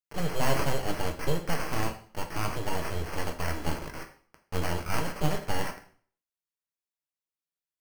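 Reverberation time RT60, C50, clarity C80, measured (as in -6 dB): 0.50 s, 11.0 dB, 14.5 dB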